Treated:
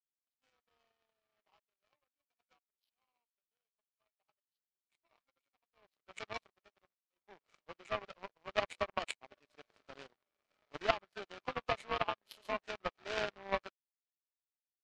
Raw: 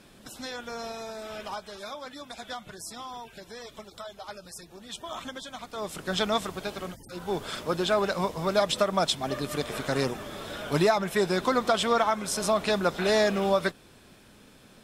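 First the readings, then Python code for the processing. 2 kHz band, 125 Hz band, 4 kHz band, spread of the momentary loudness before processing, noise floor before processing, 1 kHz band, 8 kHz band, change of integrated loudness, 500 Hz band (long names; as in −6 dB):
−11.0 dB, −20.5 dB, −15.5 dB, 18 LU, −54 dBFS, −12.5 dB, −23.0 dB, −11.5 dB, −16.0 dB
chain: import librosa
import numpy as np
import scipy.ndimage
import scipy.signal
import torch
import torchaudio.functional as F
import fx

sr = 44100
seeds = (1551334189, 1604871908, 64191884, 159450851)

y = fx.freq_compress(x, sr, knee_hz=1000.0, ratio=1.5)
y = fx.bandpass_edges(y, sr, low_hz=450.0, high_hz=5000.0)
y = fx.power_curve(y, sr, exponent=3.0)
y = y * librosa.db_to_amplitude(3.0)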